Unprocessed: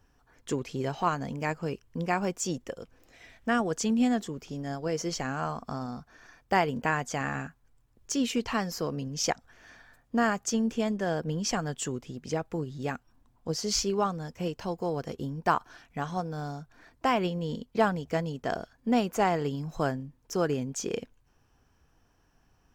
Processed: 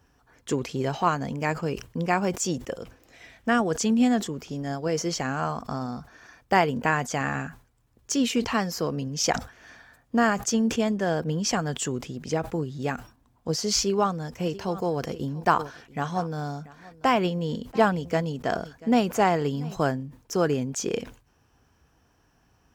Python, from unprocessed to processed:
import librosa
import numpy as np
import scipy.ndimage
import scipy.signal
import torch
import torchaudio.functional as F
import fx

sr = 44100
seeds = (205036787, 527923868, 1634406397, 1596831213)

y = fx.echo_single(x, sr, ms=687, db=-21.0, at=(14.49, 19.82), fade=0.02)
y = scipy.signal.sosfilt(scipy.signal.butter(2, 47.0, 'highpass', fs=sr, output='sos'), y)
y = fx.sustainer(y, sr, db_per_s=150.0)
y = y * 10.0 ** (4.0 / 20.0)